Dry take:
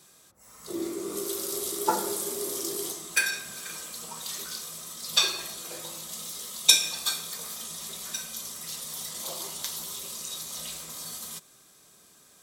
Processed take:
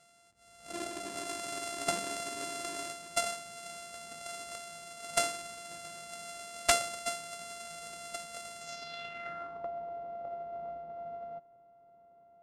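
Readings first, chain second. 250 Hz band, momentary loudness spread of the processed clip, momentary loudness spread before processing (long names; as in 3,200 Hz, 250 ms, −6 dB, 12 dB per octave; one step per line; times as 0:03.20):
−9.0 dB, 12 LU, 13 LU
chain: samples sorted by size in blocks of 64 samples
wrap-around overflow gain 8 dB
low-pass filter sweep 8,700 Hz → 730 Hz, 0:08.58–0:09.69
level −7.5 dB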